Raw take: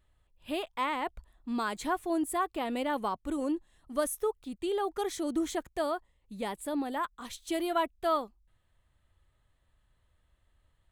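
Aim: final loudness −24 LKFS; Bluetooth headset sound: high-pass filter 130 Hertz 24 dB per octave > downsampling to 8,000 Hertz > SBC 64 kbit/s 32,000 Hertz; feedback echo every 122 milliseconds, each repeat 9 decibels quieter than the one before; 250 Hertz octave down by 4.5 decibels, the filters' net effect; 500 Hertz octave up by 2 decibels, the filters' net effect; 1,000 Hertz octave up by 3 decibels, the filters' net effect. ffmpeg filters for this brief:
ffmpeg -i in.wav -af "highpass=frequency=130:width=0.5412,highpass=frequency=130:width=1.3066,equalizer=frequency=250:width_type=o:gain=-8.5,equalizer=frequency=500:width_type=o:gain=4,equalizer=frequency=1000:width_type=o:gain=3,aecho=1:1:122|244|366|488:0.355|0.124|0.0435|0.0152,aresample=8000,aresample=44100,volume=8dB" -ar 32000 -c:a sbc -b:a 64k out.sbc

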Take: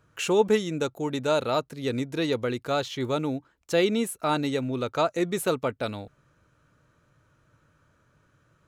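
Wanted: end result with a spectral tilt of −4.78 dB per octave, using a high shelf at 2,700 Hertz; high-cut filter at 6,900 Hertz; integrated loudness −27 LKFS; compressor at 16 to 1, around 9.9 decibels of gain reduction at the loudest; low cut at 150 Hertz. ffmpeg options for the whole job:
ffmpeg -i in.wav -af "highpass=150,lowpass=6900,highshelf=frequency=2700:gain=-6.5,acompressor=threshold=-26dB:ratio=16,volume=5.5dB" out.wav

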